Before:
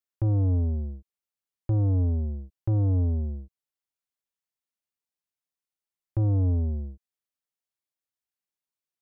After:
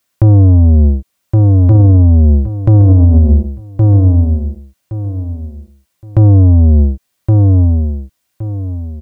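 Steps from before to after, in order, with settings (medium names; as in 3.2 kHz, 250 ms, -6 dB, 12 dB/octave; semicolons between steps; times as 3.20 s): comb of notches 430 Hz; on a send: feedback delay 1118 ms, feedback 26%, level -10.5 dB; on the sum: loudness maximiser +27 dB; trim -1 dB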